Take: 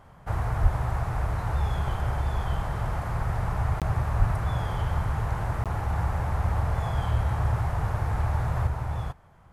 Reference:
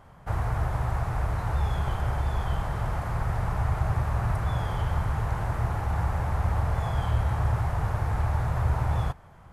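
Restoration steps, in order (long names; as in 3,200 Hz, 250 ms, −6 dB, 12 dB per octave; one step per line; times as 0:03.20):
0:00.62–0:00.74: high-pass filter 140 Hz 24 dB per octave
0:04.18–0:04.30: high-pass filter 140 Hz 24 dB per octave
repair the gap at 0:03.80/0:05.64, 17 ms
level 0 dB, from 0:08.67 +4.5 dB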